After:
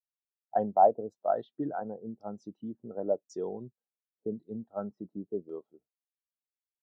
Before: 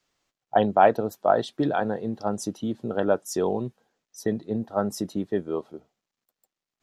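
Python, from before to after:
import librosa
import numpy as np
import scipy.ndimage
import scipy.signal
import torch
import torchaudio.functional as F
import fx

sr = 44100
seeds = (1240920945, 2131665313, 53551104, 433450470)

y = fx.filter_lfo_lowpass(x, sr, shape='saw_down', hz=0.91, low_hz=490.0, high_hz=7200.0, q=1.1)
y = fx.spectral_expand(y, sr, expansion=1.5)
y = y * librosa.db_to_amplitude(-5.5)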